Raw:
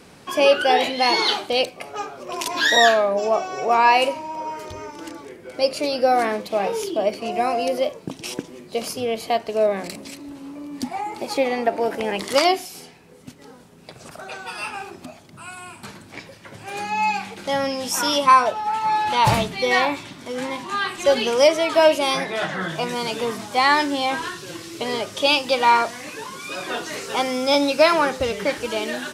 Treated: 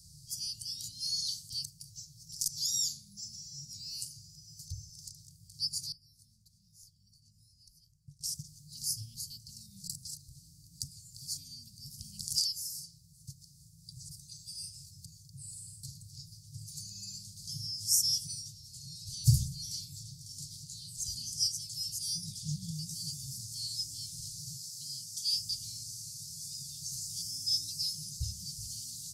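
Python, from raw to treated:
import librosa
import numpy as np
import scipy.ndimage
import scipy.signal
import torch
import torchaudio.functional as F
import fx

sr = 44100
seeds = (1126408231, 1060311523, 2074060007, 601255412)

y = fx.tone_stack(x, sr, knobs='10-0-1', at=(5.92, 8.21))
y = fx.env_flatten(y, sr, amount_pct=100, at=(22.23, 22.7))
y = fx.highpass(y, sr, hz=220.0, slope=12, at=(24.56, 25.36))
y = scipy.signal.sosfilt(scipy.signal.cheby1(5, 1.0, [150.0, 4600.0], 'bandstop', fs=sr, output='sos'), y)
y = fx.dynamic_eq(y, sr, hz=4100.0, q=3.3, threshold_db=-49.0, ratio=4.0, max_db=-7)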